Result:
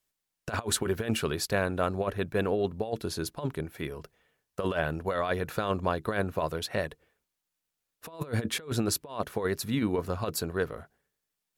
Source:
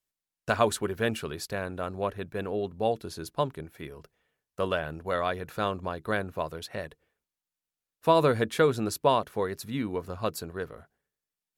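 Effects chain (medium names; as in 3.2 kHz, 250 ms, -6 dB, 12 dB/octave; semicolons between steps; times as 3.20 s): compressor with a negative ratio -30 dBFS, ratio -0.5; trim +2 dB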